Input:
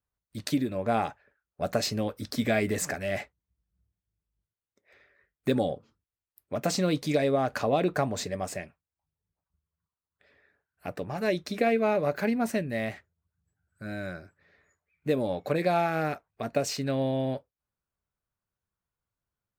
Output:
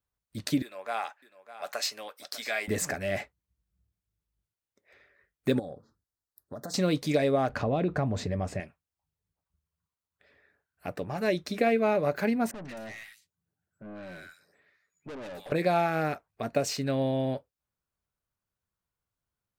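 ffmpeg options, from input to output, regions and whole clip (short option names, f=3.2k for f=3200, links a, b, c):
-filter_complex "[0:a]asettb=1/sr,asplit=3[a][b][c];[a]atrim=end=0.624[d];[b]atrim=start=0.62:end=2.68,asetpts=PTS-STARTPTS,afade=t=in:d=0.004:c=qsin,afade=t=out:st=2.056:d=0.004:c=qsin,highpass=960,aecho=1:1:602:0.188,atrim=end_sample=90846[e];[c]atrim=start=2.676[f];[d][e]acrossfade=d=0.004:c1=hsin:c2=qsin[g];[g][f]acrossfade=d=0.004:c1=qsin:c2=hsin,asettb=1/sr,asplit=3[h][i][j];[h]atrim=end=5.594[k];[i]atrim=start=5.59:end=6.74,asetpts=PTS-STARTPTS,afade=t=in:d=0.004:c=qsin,afade=t=out:st=1.146:d=0.004:c=qsin,acompressor=threshold=-36dB:ratio=6:attack=3.2:release=140:knee=1:detection=peak,asuperstop=centerf=2600:order=8:qfactor=1.4[l];[j]atrim=start=6.736[m];[k][l]acrossfade=d=0.004:c1=hsin:c2=qsin[n];[n][m]acrossfade=d=0.004:c1=qsin:c2=hsin,asettb=1/sr,asplit=3[o][p][q];[o]atrim=end=7.494[r];[p]atrim=start=7.49:end=8.6,asetpts=PTS-STARTPTS,afade=t=in:d=0.004:c=qsin,afade=t=out:st=1.106:d=0.004:c=qsin,aemphasis=mode=reproduction:type=bsi,acompressor=threshold=-27dB:ratio=2:attack=3.2:release=140:knee=1:detection=peak[s];[q]atrim=start=8.596[t];[r][s]acrossfade=d=0.004:c1=hsin:c2=qsin[u];[u][t]acrossfade=d=0.004:c1=qsin:c2=hsin,asettb=1/sr,asplit=3[v][w][x];[v]atrim=end=12.514[y];[w]atrim=start=12.51:end=15.52,asetpts=PTS-STARTPTS,afade=t=in:d=0.004:c=qsin,afade=t=out:st=3.006:d=0.004:c=qsin,highpass=160,acrossover=split=1300|4400[z][aa][ab];[aa]adelay=140[ac];[ab]adelay=260[ad];[z][ac][ad]amix=inputs=3:normalize=0,atrim=end_sample=132741,aeval=exprs='(tanh(89.1*val(0)+0.2)-tanh(0.2))/89.1':c=same[ae];[x]atrim=start=15.516[af];[y][ae]acrossfade=d=0.004:c1=hsin:c2=qsin[ag];[ag][af]acrossfade=d=0.004:c1=qsin:c2=hsin"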